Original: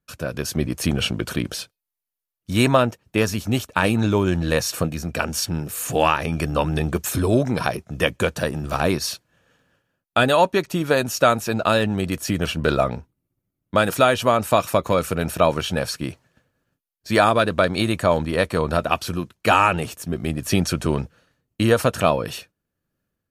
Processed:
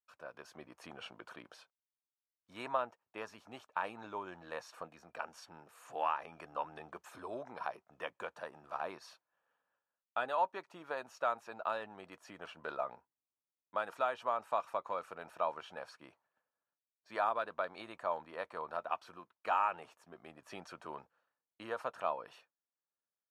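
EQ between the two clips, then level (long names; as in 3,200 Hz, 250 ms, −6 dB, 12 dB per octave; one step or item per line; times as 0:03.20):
resonant band-pass 930 Hz, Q 2
first difference
spectral tilt −4.5 dB per octave
+5.0 dB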